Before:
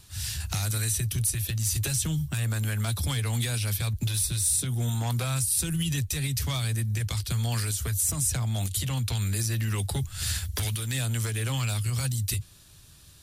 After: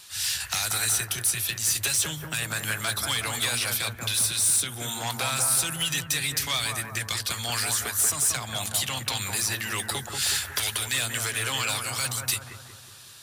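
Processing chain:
mid-hump overdrive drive 13 dB, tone 2,400 Hz, clips at −14.5 dBFS
spectral tilt +3 dB per octave
on a send: bucket-brigade delay 184 ms, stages 2,048, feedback 55%, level −3.5 dB

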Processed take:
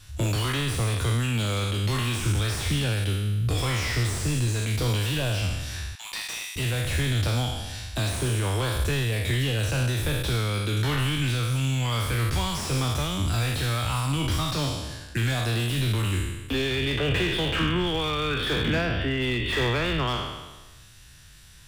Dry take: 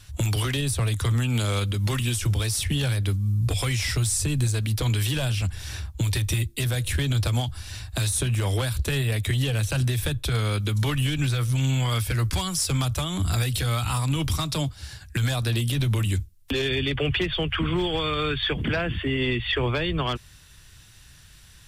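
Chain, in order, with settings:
peak hold with a decay on every bin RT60 1.20 s
0:05.95–0:06.56: Chebyshev high-pass with heavy ripple 700 Hz, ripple 3 dB
slew-rate limiting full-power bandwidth 180 Hz
level −2.5 dB

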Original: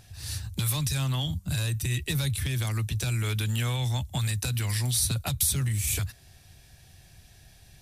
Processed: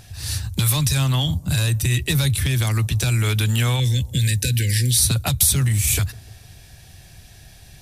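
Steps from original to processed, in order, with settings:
0:03.80–0:04.98: linear-phase brick-wall band-stop 570–1,500 Hz
on a send: bucket-brigade delay 152 ms, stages 1,024, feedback 62%, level −22.5 dB
on the sum: level +8.5 dB

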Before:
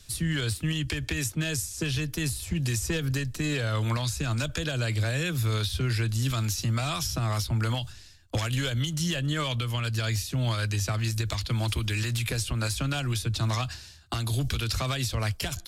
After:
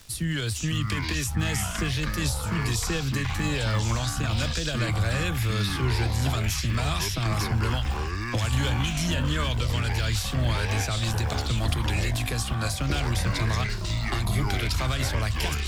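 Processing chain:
surface crackle 190 per second −37 dBFS
delay with pitch and tempo change per echo 404 ms, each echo −7 semitones, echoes 3

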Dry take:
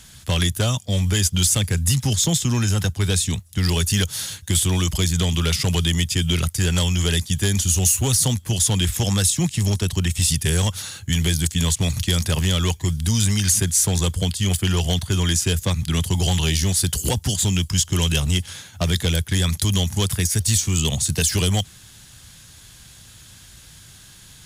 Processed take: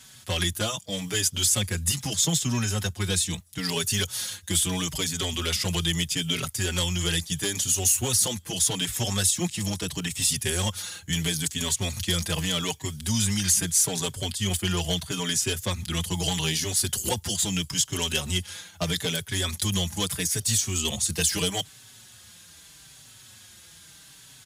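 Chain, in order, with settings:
high-pass filter 230 Hz 6 dB per octave
barber-pole flanger 4.8 ms −0.78 Hz

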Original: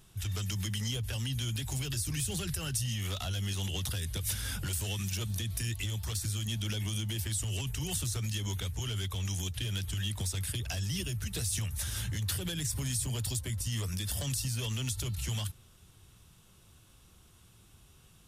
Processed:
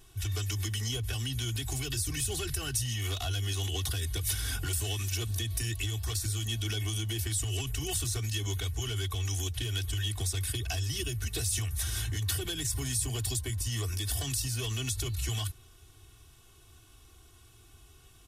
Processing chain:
comb filter 2.7 ms, depth 86%

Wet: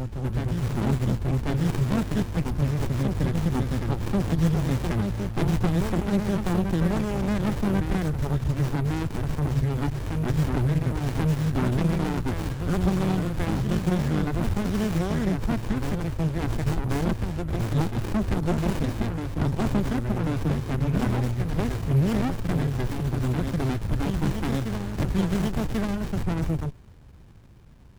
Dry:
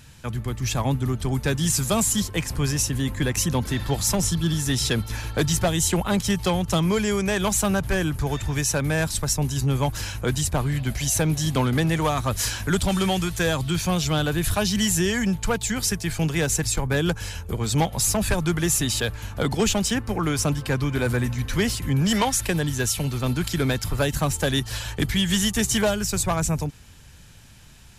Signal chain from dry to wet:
backwards echo 1,090 ms −5 dB
dynamic equaliser 3,100 Hz, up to −5 dB, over −39 dBFS, Q 1
windowed peak hold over 65 samples

